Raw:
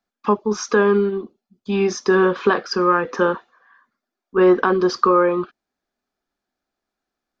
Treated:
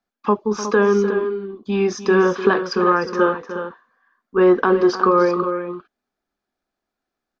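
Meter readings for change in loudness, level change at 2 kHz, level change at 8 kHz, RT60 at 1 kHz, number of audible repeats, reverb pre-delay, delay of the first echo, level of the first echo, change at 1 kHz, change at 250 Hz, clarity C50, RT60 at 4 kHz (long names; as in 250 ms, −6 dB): 0.0 dB, 0.0 dB, can't be measured, no reverb audible, 2, no reverb audible, 301 ms, −12.5 dB, +0.5 dB, +1.0 dB, no reverb audible, no reverb audible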